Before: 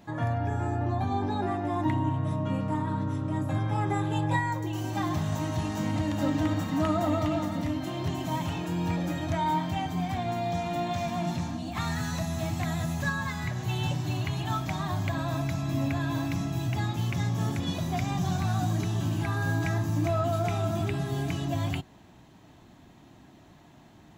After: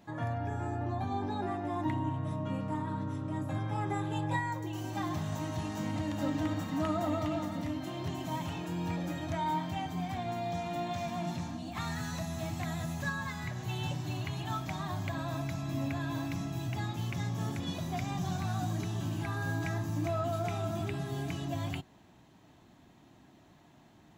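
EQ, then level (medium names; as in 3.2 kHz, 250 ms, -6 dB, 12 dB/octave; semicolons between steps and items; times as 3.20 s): bass shelf 78 Hz -5 dB; -5.0 dB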